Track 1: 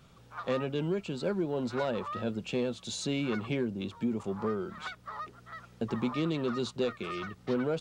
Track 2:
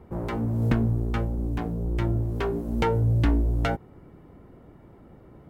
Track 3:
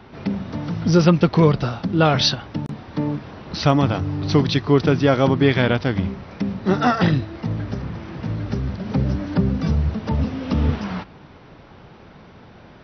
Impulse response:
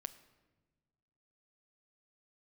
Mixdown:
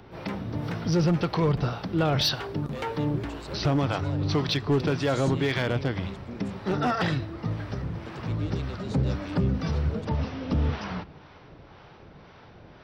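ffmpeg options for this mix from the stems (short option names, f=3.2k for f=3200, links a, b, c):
-filter_complex "[0:a]highshelf=f=4.5k:g=8.5,adelay=2250,volume=-6dB[a];[1:a]highpass=f=220:p=1,volume=-7dB,asplit=2[b][c];[c]volume=-6.5dB[d];[2:a]volume=-4dB,asplit=2[e][f];[f]volume=-5.5dB[g];[b][e]amix=inputs=2:normalize=0,acompressor=mode=upward:threshold=-54dB:ratio=2.5,alimiter=limit=-15.5dB:level=0:latency=1:release=45,volume=0dB[h];[3:a]atrim=start_sample=2205[i];[d][g]amix=inputs=2:normalize=0[j];[j][i]afir=irnorm=-1:irlink=0[k];[a][h][k]amix=inputs=3:normalize=0,equalizer=f=220:w=2.4:g=-5.5,acrossover=split=560[l][m];[l]aeval=exprs='val(0)*(1-0.5/2+0.5/2*cos(2*PI*1.9*n/s))':c=same[n];[m]aeval=exprs='val(0)*(1-0.5/2-0.5/2*cos(2*PI*1.9*n/s))':c=same[o];[n][o]amix=inputs=2:normalize=0,asoftclip=type=hard:threshold=-18dB"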